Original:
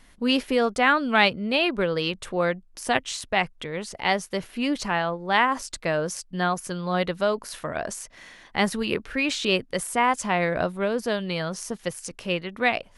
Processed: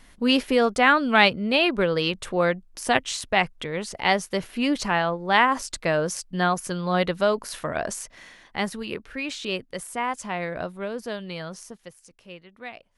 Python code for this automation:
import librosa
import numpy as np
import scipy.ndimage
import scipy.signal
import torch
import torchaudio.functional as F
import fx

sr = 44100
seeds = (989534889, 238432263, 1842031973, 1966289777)

y = fx.gain(x, sr, db=fx.line((8.01, 2.0), (8.8, -6.0), (11.55, -6.0), (11.97, -16.0)))